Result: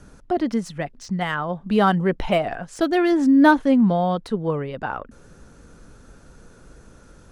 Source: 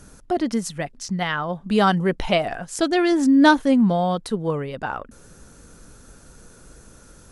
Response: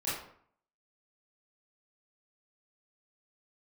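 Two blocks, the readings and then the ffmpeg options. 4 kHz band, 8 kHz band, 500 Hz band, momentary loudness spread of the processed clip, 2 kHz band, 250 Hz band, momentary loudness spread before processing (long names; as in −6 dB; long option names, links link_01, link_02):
−5.5 dB, can't be measured, +0.5 dB, 15 LU, −1.0 dB, +0.5 dB, 14 LU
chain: -filter_complex "[0:a]aemphasis=mode=reproduction:type=50fm,acrossover=split=520|2700[link_01][link_02][link_03];[link_03]asoftclip=type=hard:threshold=-34.5dB[link_04];[link_01][link_02][link_04]amix=inputs=3:normalize=0"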